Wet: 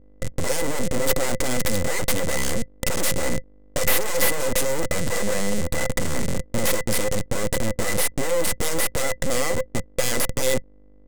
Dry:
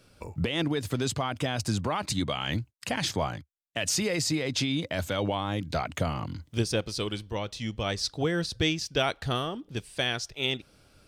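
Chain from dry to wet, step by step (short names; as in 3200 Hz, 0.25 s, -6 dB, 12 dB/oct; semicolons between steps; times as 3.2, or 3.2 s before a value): Schmitt trigger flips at -35 dBFS; graphic EQ 125/1000/8000 Hz +6/-5/+12 dB; hum 50 Hz, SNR 28 dB; full-wave rectifier; small resonant body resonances 520/2000 Hz, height 17 dB, ringing for 85 ms; gain +8 dB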